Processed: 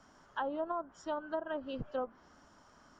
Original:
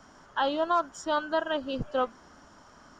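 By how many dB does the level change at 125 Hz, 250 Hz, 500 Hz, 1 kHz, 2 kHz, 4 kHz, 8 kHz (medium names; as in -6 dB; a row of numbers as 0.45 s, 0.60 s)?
-7.5 dB, -7.5 dB, -8.0 dB, -11.0 dB, -11.5 dB, -16.5 dB, under -10 dB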